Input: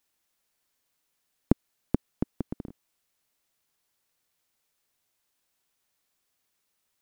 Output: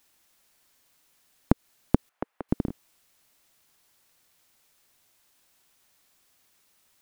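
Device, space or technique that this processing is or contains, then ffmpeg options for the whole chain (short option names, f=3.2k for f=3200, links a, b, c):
mastering chain: -filter_complex "[0:a]asettb=1/sr,asplit=3[a][b][c];[a]atrim=end=2.094[d];[b]atrim=start=2.09:end=2.49,asetpts=PTS-STARTPTS,afade=t=in:d=0.004:c=qsin,afade=t=out:st=0.396:d=0.004:c=qsin,acrossover=split=530 2400:gain=0.0708 1 0.141[e][f][g];[e][f][g]amix=inputs=3:normalize=0[h];[c]atrim=start=2.486[i];[d][h]acrossfade=d=0.004:c1=hsin:c2=qsin[j];[j][i]acrossfade=d=0.004:c1=qsin:c2=hsin,equalizer=f=460:t=o:w=0.2:g=-3,acompressor=threshold=-21dB:ratio=3,alimiter=level_in=12dB:limit=-1dB:release=50:level=0:latency=1,volume=-1dB"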